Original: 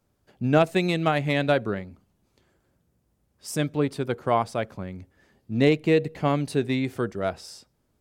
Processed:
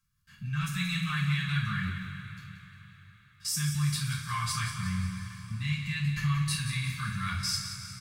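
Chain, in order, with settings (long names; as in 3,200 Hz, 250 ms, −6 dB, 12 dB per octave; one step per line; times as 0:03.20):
elliptic band-stop filter 160–1,300 Hz, stop band 60 dB
comb filter 1.8 ms, depth 42%
output level in coarse steps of 22 dB
repeating echo 178 ms, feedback 52%, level −10 dB
coupled-rooms reverb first 0.42 s, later 4.4 s, from −18 dB, DRR −6 dB
level +6.5 dB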